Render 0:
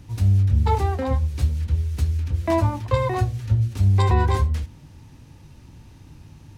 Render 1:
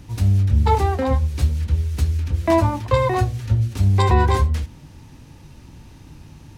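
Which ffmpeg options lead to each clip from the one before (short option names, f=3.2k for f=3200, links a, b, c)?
-af "equalizer=f=100:t=o:w=0.86:g=-4,volume=4.5dB"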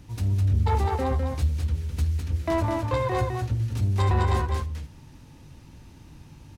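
-af "asoftclip=type=tanh:threshold=-12dB,aecho=1:1:206:0.596,volume=-6dB"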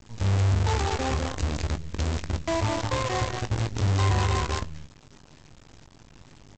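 -filter_complex "[0:a]aresample=16000,acrusher=bits=5:dc=4:mix=0:aa=0.000001,aresample=44100,asplit=2[a][b];[b]adelay=20,volume=-11dB[c];[a][c]amix=inputs=2:normalize=0,volume=-2.5dB"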